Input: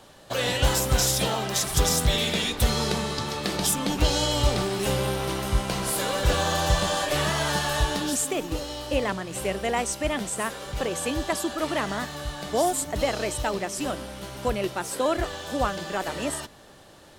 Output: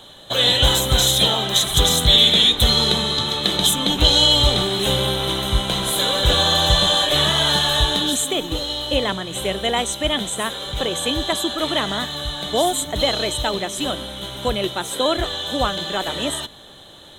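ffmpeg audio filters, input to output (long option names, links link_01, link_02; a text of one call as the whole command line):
ffmpeg -i in.wav -af "superequalizer=13b=3.98:14b=0.355,volume=4dB" out.wav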